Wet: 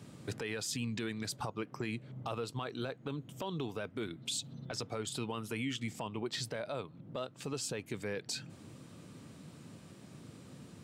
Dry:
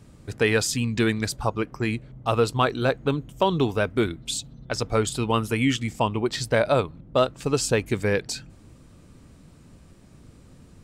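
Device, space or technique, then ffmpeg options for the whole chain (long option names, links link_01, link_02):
broadcast voice chain: -af "highpass=frequency=110:width=0.5412,highpass=frequency=110:width=1.3066,deesser=0.4,acompressor=threshold=-34dB:ratio=5,equalizer=frequency=3400:width_type=o:width=0.77:gain=3,alimiter=level_in=3.5dB:limit=-24dB:level=0:latency=1:release=11,volume=-3.5dB"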